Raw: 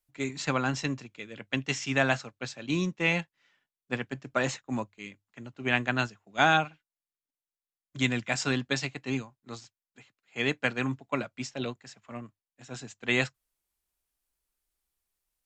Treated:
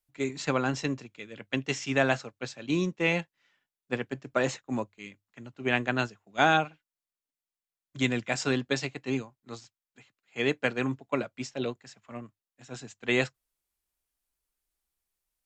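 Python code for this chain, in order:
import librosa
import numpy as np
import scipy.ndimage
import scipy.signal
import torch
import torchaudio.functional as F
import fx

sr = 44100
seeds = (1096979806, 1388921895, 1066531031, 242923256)

y = fx.dynamic_eq(x, sr, hz=430.0, q=1.2, threshold_db=-44.0, ratio=4.0, max_db=6)
y = y * librosa.db_to_amplitude(-1.5)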